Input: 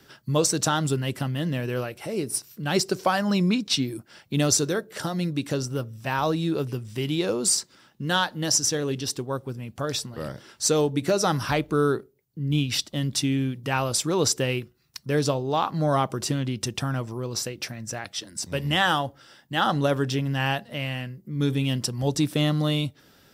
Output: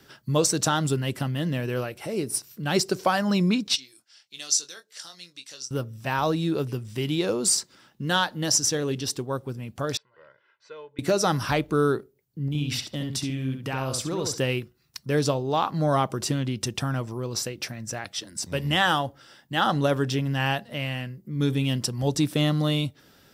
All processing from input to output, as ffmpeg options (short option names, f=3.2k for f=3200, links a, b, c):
-filter_complex "[0:a]asettb=1/sr,asplit=3[a][b][c];[a]atrim=end=3.764[d];[b]atrim=start=3.76:end=5.71,asetpts=PTS-STARTPTS,afade=t=in:d=0.004:c=qsin,afade=t=out:st=1.946:d=0.004:c=qsin,bandpass=f=5.4k:t=q:w=1.4,asplit=2[e][f];[f]adelay=23,volume=-9dB[g];[e][g]amix=inputs=2:normalize=0,atrim=end_sample=85995[h];[c]atrim=start=5.706[i];[d][h]acrossfade=d=0.004:c1=hsin:c2=qsin[j];[j][i]acrossfade=d=0.004:c1=qsin:c2=hsin,asettb=1/sr,asplit=3[k][l][m];[k]atrim=end=9.974[n];[l]atrim=start=9.97:end=10.99,asetpts=PTS-STARTPTS,afade=t=in:d=0.004:c=qsin,afade=t=out:st=1.016:d=0.004:c=qsin,lowpass=f=2.1k:w=0.5412,lowpass=f=2.1k:w=1.3066,aderivative,aecho=1:1:2:0.72,atrim=end_sample=44982[o];[m]atrim=start=10.986[p];[n][o]acrossfade=d=0.004:c1=hsin:c2=qsin[q];[q][p]acrossfade=d=0.004:c1=qsin:c2=hsin,asettb=1/sr,asplit=3[r][s][t];[r]atrim=end=12.484[u];[s]atrim=start=12.48:end=14.4,asetpts=PTS-STARTPTS,afade=t=in:d=0.004:c=qsin,afade=t=out:st=1.916:d=0.004:c=qsin,acompressor=threshold=-26dB:ratio=4:attack=3.2:release=140:knee=1:detection=peak,asplit=2[v][w];[w]adelay=68,lowpass=f=3k:p=1,volume=-4.5dB,asplit=2[x][y];[y]adelay=68,lowpass=f=3k:p=1,volume=0.2,asplit=2[z][aa];[aa]adelay=68,lowpass=f=3k:p=1,volume=0.2[ab];[v][x][z][ab]amix=inputs=4:normalize=0,atrim=end_sample=84672[ac];[t]atrim=start=14.396[ad];[u][ac]acrossfade=d=0.004:c1=hsin:c2=qsin[ae];[ae][ad]acrossfade=d=0.004:c1=qsin:c2=hsin"